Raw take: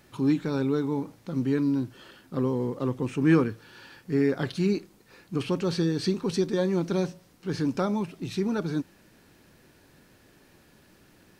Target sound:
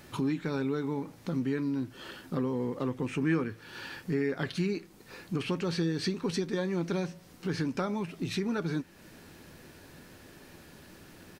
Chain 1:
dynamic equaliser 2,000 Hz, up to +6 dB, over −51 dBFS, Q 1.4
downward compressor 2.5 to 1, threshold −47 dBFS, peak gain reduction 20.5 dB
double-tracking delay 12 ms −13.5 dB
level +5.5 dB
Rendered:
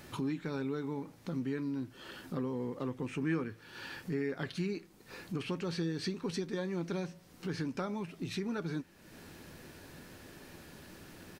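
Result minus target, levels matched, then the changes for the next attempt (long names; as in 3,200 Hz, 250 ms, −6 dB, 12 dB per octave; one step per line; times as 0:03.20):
downward compressor: peak gain reduction +5 dB
change: downward compressor 2.5 to 1, threshold −38.5 dBFS, peak gain reduction 15.5 dB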